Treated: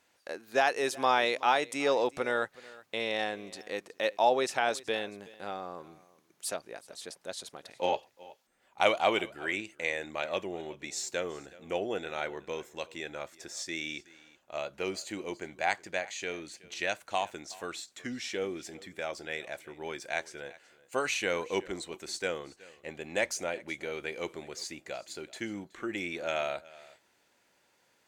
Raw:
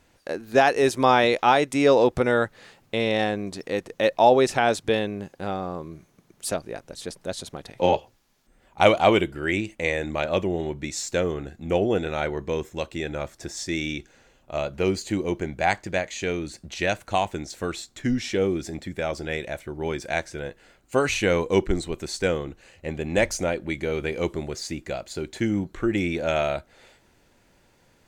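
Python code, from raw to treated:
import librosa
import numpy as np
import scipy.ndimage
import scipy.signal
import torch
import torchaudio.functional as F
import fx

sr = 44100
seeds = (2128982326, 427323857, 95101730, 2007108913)

y = fx.highpass(x, sr, hz=720.0, slope=6)
y = y + 10.0 ** (-21.0 / 20.0) * np.pad(y, (int(373 * sr / 1000.0), 0))[:len(y)]
y = y * 10.0 ** (-5.0 / 20.0)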